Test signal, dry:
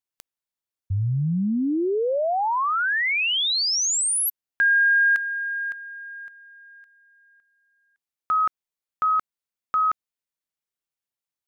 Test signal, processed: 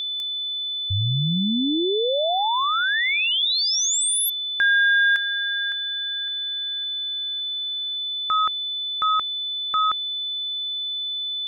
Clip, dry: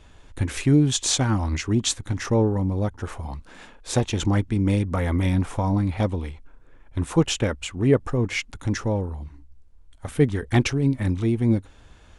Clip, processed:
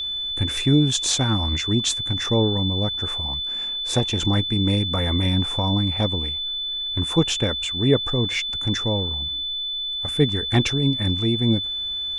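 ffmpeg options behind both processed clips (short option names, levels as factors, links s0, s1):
-af "aeval=exprs='val(0)+0.0562*sin(2*PI*3500*n/s)':c=same"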